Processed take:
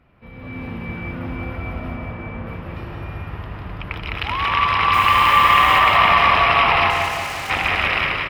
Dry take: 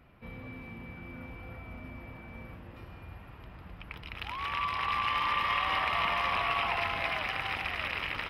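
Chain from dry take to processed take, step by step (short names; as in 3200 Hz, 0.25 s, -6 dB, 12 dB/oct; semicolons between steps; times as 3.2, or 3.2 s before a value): high shelf 6700 Hz -9.5 dB; AGC gain up to 13 dB; 1.95–2.47 air absorption 210 m; 4.92–5.78 added noise white -42 dBFS; 6.9–7.5 hard clip -31 dBFS, distortion -12 dB; feedback echo 0.18 s, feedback 48%, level -5 dB; reverb RT60 0.75 s, pre-delay 0.126 s, DRR 9 dB; gain +1.5 dB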